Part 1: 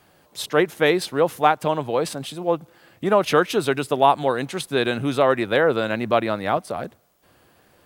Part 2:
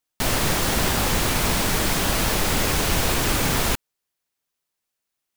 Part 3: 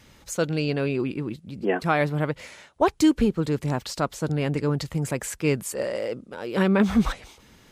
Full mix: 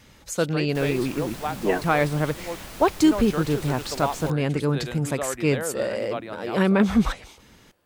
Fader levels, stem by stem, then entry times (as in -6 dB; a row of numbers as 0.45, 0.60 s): -12.5, -18.0, +1.0 dB; 0.00, 0.55, 0.00 s